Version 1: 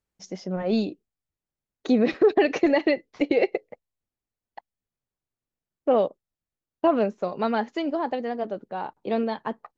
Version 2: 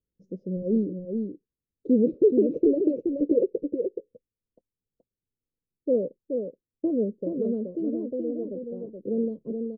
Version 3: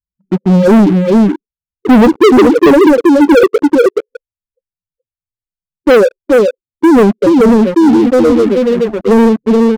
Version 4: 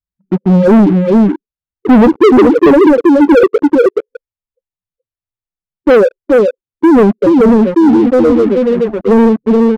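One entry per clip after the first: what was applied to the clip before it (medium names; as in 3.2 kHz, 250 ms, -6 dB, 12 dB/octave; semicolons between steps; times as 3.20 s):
elliptic low-pass 510 Hz, stop band 40 dB; delay 425 ms -5.5 dB
loudest bins only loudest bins 4; waveshaping leveller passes 5; trim +8.5 dB
treble shelf 3.5 kHz -11.5 dB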